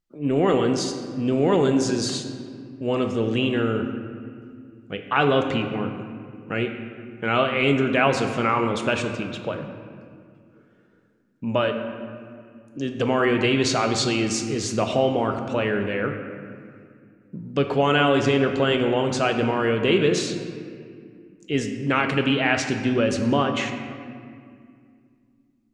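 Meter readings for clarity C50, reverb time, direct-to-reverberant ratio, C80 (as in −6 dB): 6.5 dB, 2.2 s, 5.0 dB, 7.5 dB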